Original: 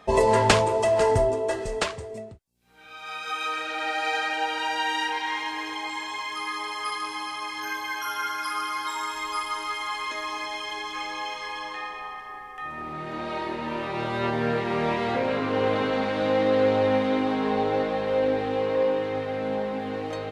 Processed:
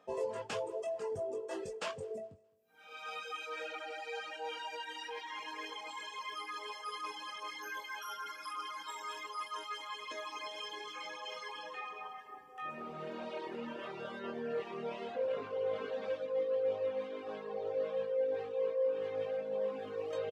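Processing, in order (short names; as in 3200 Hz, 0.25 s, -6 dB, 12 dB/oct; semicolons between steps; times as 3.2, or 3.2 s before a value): HPF 150 Hz 12 dB/oct; reverse; compressor 16:1, threshold -31 dBFS, peak gain reduction 19 dB; reverse; doubler 21 ms -5 dB; on a send: feedback echo 0.208 s, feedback 34%, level -17 dB; on the sum: dynamic EQ 2900 Hz, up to +3 dB, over -45 dBFS, Q 1.2; reverb removal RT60 1.7 s; thirty-one-band EQ 500 Hz +9 dB, 2000 Hz -6 dB, 4000 Hz -6 dB, 10000 Hz -5 dB; gain -6 dB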